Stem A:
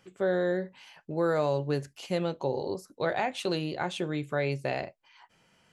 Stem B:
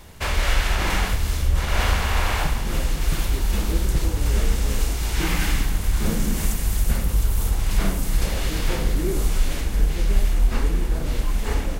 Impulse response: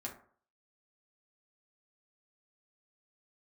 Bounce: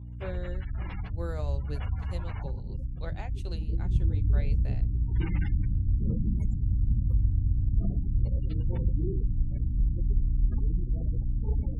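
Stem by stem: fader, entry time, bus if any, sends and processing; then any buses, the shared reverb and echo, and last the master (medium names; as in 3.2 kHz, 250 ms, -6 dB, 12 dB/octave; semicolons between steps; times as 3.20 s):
-11.5 dB, 0.00 s, no send, treble shelf 3.9 kHz +9.5 dB; upward expansion 2.5:1, over -43 dBFS
3.53 s -17.5 dB -> 3.95 s -10.5 dB, 0.00 s, no send, spectral gate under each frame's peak -20 dB strong; hum 60 Hz, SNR 10 dB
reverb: none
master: peaking EQ 93 Hz +13 dB 1.4 oct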